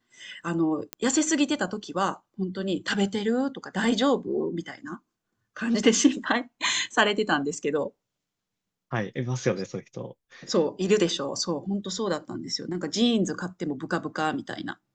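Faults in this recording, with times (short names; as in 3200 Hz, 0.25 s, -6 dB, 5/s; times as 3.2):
0.93 pop -13 dBFS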